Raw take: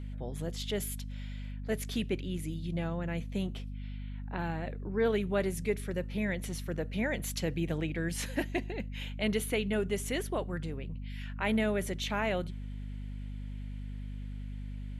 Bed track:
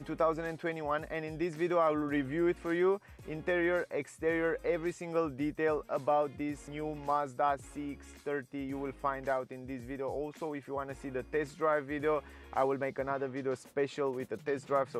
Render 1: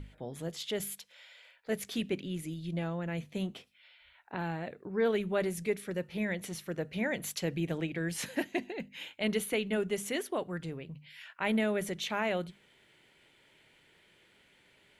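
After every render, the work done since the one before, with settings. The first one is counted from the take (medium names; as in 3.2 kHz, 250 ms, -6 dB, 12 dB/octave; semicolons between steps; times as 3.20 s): hum notches 50/100/150/200/250 Hz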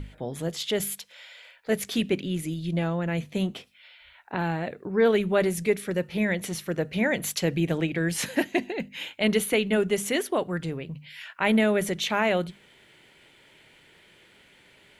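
trim +8 dB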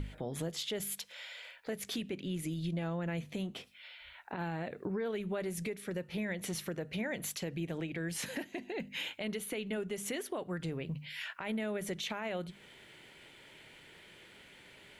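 compression 10:1, threshold -33 dBFS, peak gain reduction 16.5 dB; peak limiter -28 dBFS, peak gain reduction 9.5 dB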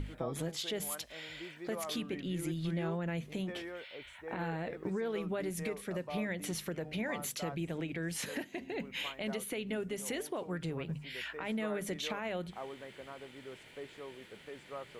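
add bed track -14 dB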